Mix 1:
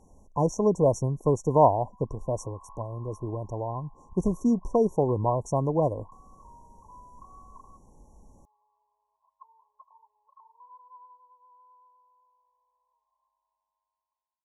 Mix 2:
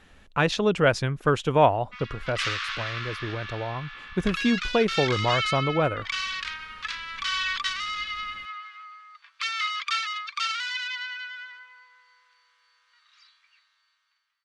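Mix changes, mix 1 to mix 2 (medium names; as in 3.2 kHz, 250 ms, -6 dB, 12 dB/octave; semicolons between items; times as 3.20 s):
background: remove steep low-pass 2.3 kHz 96 dB/octave; master: remove brick-wall FIR band-stop 1.1–5.5 kHz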